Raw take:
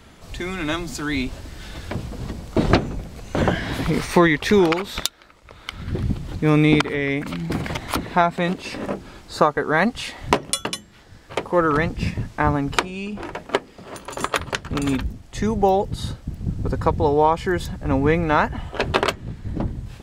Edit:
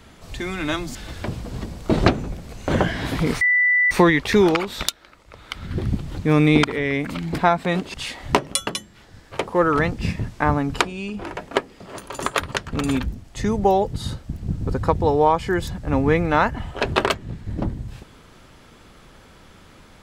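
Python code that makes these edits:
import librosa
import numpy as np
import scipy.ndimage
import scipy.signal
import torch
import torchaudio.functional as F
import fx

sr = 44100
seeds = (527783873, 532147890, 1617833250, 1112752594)

y = fx.edit(x, sr, fx.cut(start_s=0.95, length_s=0.67),
    fx.insert_tone(at_s=4.08, length_s=0.5, hz=1980.0, db=-14.0),
    fx.cut(start_s=7.55, length_s=0.56),
    fx.cut(start_s=8.67, length_s=1.25), tone=tone)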